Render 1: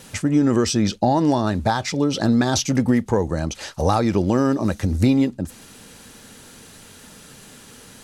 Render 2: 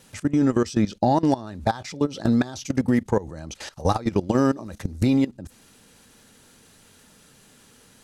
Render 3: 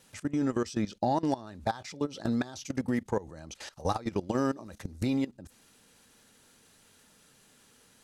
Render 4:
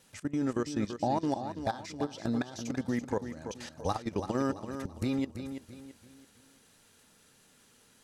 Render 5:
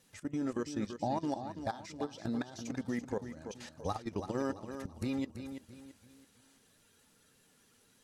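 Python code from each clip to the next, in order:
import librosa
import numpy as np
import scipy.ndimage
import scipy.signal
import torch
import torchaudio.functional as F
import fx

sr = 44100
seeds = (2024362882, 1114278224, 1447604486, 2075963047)

y1 = fx.level_steps(x, sr, step_db=18)
y2 = fx.low_shelf(y1, sr, hz=330.0, db=-4.5)
y2 = F.gain(torch.from_numpy(y2), -6.5).numpy()
y3 = fx.echo_feedback(y2, sr, ms=334, feedback_pct=36, wet_db=-9.0)
y3 = F.gain(torch.from_numpy(y3), -2.0).numpy()
y4 = fx.spec_quant(y3, sr, step_db=15)
y4 = F.gain(torch.from_numpy(y4), -4.0).numpy()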